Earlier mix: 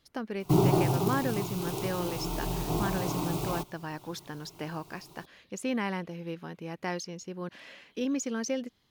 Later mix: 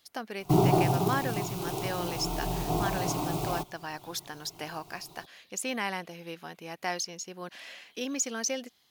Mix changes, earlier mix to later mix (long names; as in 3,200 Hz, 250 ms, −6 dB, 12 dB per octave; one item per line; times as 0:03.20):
speech: add spectral tilt +3 dB per octave
master: add parametric band 720 Hz +7 dB 0.3 octaves